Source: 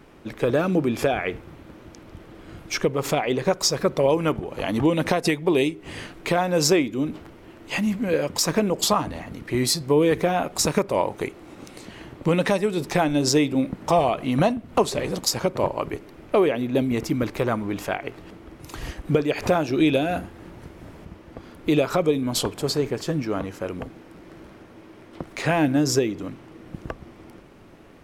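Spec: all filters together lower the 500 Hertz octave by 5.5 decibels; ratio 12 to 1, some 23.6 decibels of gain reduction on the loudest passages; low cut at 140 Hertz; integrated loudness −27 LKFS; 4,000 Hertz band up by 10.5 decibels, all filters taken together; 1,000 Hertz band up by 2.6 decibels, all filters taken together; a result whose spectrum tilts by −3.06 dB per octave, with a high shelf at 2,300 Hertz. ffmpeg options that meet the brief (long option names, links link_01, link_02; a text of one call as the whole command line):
ffmpeg -i in.wav -af "highpass=140,equalizer=frequency=500:width_type=o:gain=-9,equalizer=frequency=1000:width_type=o:gain=5.5,highshelf=frequency=2300:gain=6.5,equalizer=frequency=4000:width_type=o:gain=7,acompressor=threshold=-33dB:ratio=12,volume=10.5dB" out.wav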